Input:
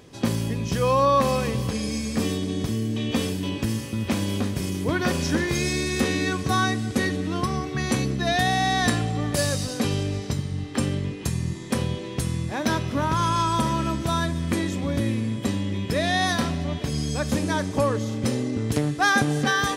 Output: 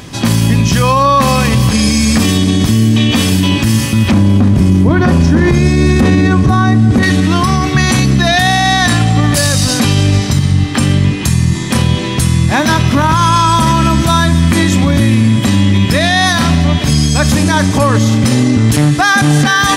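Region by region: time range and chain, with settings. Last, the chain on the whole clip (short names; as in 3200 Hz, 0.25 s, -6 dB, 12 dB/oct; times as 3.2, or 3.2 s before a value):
4.11–7.03 LPF 12000 Hz + tilt shelf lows +9 dB, about 1400 Hz
whole clip: bell 450 Hz -10.5 dB 0.84 oct; maximiser +21.5 dB; gain -1 dB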